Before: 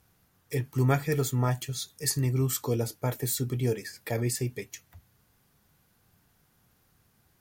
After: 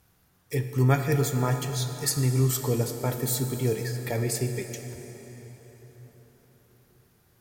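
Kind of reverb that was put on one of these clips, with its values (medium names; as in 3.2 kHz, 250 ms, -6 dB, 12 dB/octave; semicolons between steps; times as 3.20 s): plate-style reverb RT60 4.7 s, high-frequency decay 0.7×, DRR 6 dB; trim +1.5 dB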